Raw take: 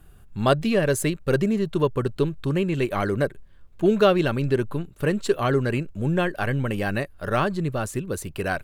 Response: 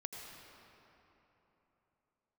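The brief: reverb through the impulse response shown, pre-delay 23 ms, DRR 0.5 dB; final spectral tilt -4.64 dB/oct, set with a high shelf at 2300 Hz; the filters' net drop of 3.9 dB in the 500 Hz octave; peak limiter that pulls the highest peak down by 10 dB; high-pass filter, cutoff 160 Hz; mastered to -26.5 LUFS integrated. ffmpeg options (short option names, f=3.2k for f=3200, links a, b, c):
-filter_complex "[0:a]highpass=160,equalizer=f=500:t=o:g=-5.5,highshelf=f=2.3k:g=7.5,alimiter=limit=-14dB:level=0:latency=1,asplit=2[a][b];[1:a]atrim=start_sample=2205,adelay=23[c];[b][c]afir=irnorm=-1:irlink=0,volume=1dB[d];[a][d]amix=inputs=2:normalize=0,volume=-2dB"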